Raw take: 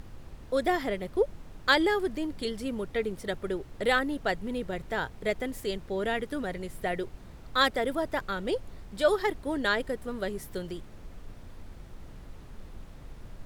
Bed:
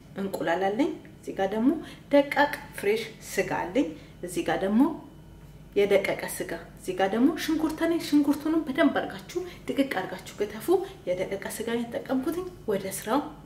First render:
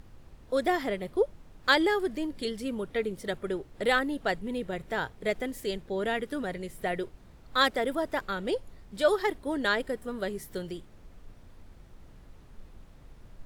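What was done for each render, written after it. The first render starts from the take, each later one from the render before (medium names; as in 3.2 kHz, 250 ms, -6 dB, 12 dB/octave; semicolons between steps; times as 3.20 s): noise print and reduce 6 dB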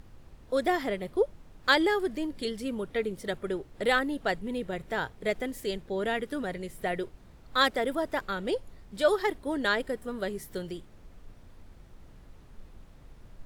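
no audible change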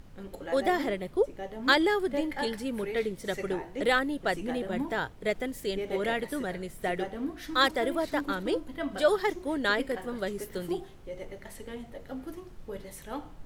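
add bed -12 dB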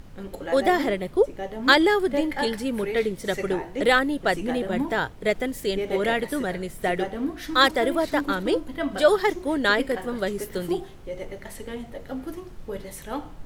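trim +6 dB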